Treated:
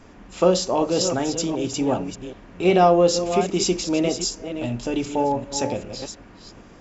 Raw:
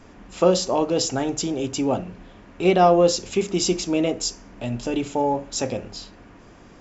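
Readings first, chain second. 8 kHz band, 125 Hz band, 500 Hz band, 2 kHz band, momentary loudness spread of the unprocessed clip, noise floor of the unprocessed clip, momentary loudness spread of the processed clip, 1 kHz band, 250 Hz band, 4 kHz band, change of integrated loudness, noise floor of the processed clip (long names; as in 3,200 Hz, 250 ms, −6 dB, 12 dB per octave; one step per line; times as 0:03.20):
can't be measured, +0.5 dB, +0.5 dB, +0.5 dB, 13 LU, −48 dBFS, 16 LU, +0.5 dB, +0.5 dB, +0.5 dB, +0.5 dB, −47 dBFS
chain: delay that plays each chunk backwards 389 ms, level −9 dB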